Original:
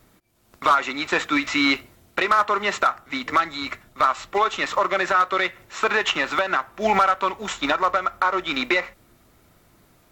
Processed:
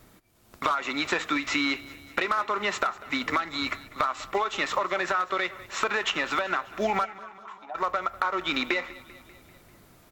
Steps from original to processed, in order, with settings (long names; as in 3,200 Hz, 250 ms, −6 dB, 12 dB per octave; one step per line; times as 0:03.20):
downward compressor, threshold −25 dBFS, peak gain reduction 11 dB
0:07.04–0:07.74: resonant band-pass 2,300 Hz → 720 Hz, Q 8.2
repeating echo 196 ms, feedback 60%, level −19.5 dB
level +1.5 dB